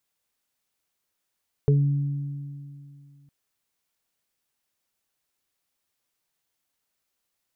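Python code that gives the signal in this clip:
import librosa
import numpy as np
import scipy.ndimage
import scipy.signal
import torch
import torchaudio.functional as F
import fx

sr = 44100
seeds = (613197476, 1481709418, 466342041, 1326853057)

y = fx.additive(sr, length_s=1.61, hz=142.0, level_db=-15.0, upper_db=(-17.0, -3.5), decay_s=2.53, upper_decays_s=(2.8, 0.23))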